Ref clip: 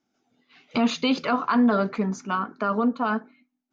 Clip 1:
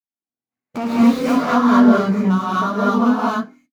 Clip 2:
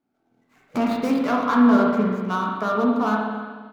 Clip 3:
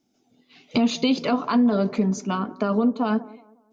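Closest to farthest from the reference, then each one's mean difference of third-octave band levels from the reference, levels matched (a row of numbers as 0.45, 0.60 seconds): 3, 2, 1; 3.0, 6.5, 8.5 decibels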